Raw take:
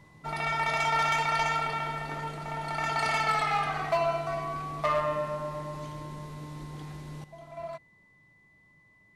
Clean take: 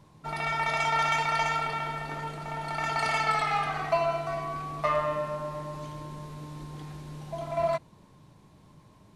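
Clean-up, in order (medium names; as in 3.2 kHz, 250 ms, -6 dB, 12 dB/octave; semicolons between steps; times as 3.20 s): clip repair -20 dBFS; band-stop 2 kHz, Q 30; gain correction +12 dB, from 7.24 s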